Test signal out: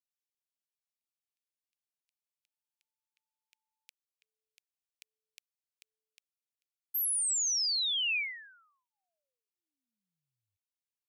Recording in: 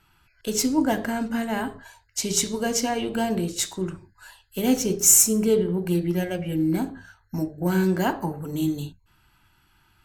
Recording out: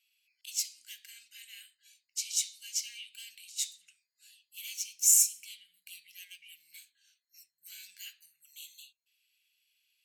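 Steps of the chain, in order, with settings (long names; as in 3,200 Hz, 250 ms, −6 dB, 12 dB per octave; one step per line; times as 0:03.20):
elliptic high-pass filter 2,400 Hz, stop band 60 dB
level −6.5 dB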